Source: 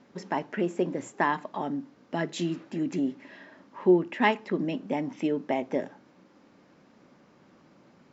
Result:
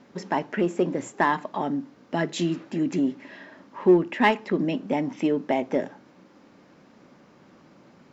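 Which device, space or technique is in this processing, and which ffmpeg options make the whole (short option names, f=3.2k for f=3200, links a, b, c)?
parallel distortion: -filter_complex "[0:a]asplit=2[a][b];[b]asoftclip=type=hard:threshold=-23dB,volume=-10dB[c];[a][c]amix=inputs=2:normalize=0,volume=2dB"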